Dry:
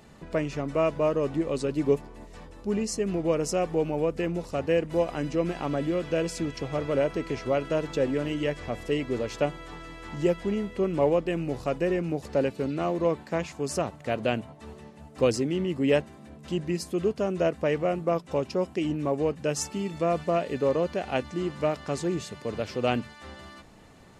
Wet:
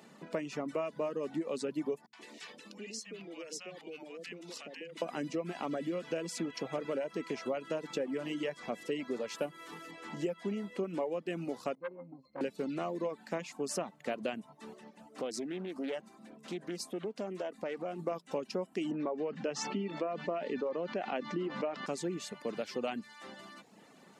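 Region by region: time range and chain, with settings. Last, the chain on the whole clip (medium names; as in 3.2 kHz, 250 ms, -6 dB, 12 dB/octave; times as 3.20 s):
2.06–5.02 s: frequency weighting D + compression 8:1, threshold -37 dBFS + three bands offset in time lows, highs, mids 70/130 ms, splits 170/740 Hz
9.35–9.91 s: CVSD coder 64 kbps + band-stop 770 Hz, Q 7.3
11.75–12.41 s: pitch-class resonator C, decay 0.2 s + transformer saturation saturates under 960 Hz
14.74–17.99 s: peaking EQ 140 Hz -7 dB 0.63 oct + compression 3:1, threshold -32 dBFS + loudspeaker Doppler distortion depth 0.28 ms
18.91–21.86 s: high-pass 170 Hz + distance through air 180 m + level flattener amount 50%
whole clip: Chebyshev high-pass 190 Hz, order 3; compression 6:1, threshold -29 dBFS; reverb removal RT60 0.64 s; trim -2 dB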